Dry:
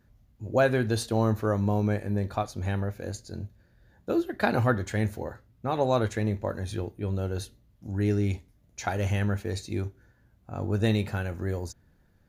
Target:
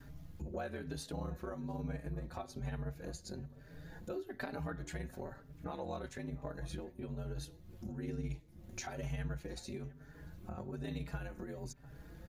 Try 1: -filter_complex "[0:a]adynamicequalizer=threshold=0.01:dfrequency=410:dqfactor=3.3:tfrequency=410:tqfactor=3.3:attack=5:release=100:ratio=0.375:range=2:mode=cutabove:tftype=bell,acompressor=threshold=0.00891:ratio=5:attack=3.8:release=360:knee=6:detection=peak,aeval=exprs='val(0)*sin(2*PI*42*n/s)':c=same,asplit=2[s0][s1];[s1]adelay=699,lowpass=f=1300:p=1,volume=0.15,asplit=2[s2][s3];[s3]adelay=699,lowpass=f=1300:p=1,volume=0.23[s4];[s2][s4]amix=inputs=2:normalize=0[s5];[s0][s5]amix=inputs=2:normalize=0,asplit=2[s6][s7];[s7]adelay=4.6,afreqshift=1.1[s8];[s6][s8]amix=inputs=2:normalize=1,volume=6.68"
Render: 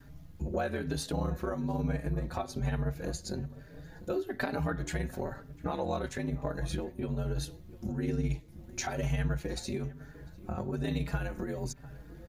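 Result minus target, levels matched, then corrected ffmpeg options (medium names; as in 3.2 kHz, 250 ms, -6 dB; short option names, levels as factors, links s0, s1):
compression: peak gain reduction -9 dB
-filter_complex "[0:a]adynamicequalizer=threshold=0.01:dfrequency=410:dqfactor=3.3:tfrequency=410:tqfactor=3.3:attack=5:release=100:ratio=0.375:range=2:mode=cutabove:tftype=bell,acompressor=threshold=0.00251:ratio=5:attack=3.8:release=360:knee=6:detection=peak,aeval=exprs='val(0)*sin(2*PI*42*n/s)':c=same,asplit=2[s0][s1];[s1]adelay=699,lowpass=f=1300:p=1,volume=0.15,asplit=2[s2][s3];[s3]adelay=699,lowpass=f=1300:p=1,volume=0.23[s4];[s2][s4]amix=inputs=2:normalize=0[s5];[s0][s5]amix=inputs=2:normalize=0,asplit=2[s6][s7];[s7]adelay=4.6,afreqshift=1.1[s8];[s6][s8]amix=inputs=2:normalize=1,volume=6.68"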